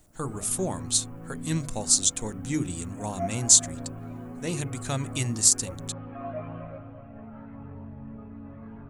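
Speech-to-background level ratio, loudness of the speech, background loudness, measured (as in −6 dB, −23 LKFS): 15.5 dB, −24.5 LKFS, −40.0 LKFS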